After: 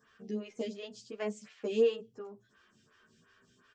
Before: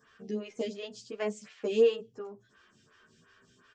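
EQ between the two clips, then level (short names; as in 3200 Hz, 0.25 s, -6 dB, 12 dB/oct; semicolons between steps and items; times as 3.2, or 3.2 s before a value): bell 220 Hz +3 dB 0.28 oct; -3.5 dB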